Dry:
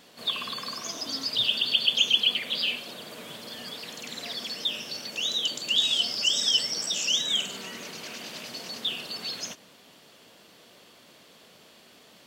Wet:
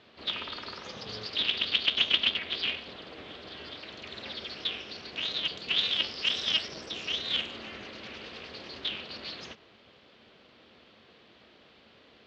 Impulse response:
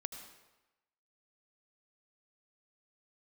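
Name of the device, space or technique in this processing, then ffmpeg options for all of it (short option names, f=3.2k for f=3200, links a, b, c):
ring modulator pedal into a guitar cabinet: -filter_complex "[0:a]asettb=1/sr,asplit=3[a][b][c];[a]atrim=end=6.684[d];[b]atrim=start=6.68:end=7.24,asetpts=PTS-STARTPTS,afade=t=in:d=0.004:c=qsin,afade=t=out:st=0.556:d=0.004:c=qsin,tiltshelf=f=730:g=3.5[e];[c]atrim=start=7.236[f];[d][e]acrossfade=d=0.004:c1=hsin:c2=qsin[g];[g][f]acrossfade=d=0.004:c1=qsin:c2=hsin,aeval=exprs='val(0)*sgn(sin(2*PI*160*n/s))':c=same,highpass=79,equalizer=f=220:t=q:w=4:g=7,equalizer=f=490:t=q:w=4:g=3,equalizer=f=860:t=q:w=4:g=-5,lowpass=f=4k:w=0.5412,lowpass=f=4k:w=1.3066,volume=-2.5dB"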